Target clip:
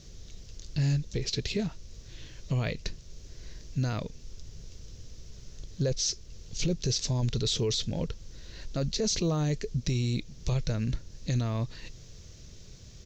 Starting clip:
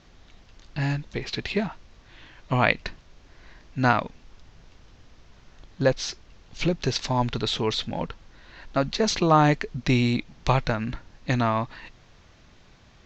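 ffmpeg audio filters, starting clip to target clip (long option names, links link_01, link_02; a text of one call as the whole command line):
ffmpeg -i in.wav -filter_complex "[0:a]firequalizer=gain_entry='entry(130,0);entry(260,-9);entry(440,-3);entry(800,-19);entry(5700,5)':delay=0.05:min_phase=1,asplit=2[link_01][link_02];[link_02]acompressor=threshold=-43dB:ratio=6,volume=-1.5dB[link_03];[link_01][link_03]amix=inputs=2:normalize=0,alimiter=limit=-22dB:level=0:latency=1:release=12,volume=2dB" out.wav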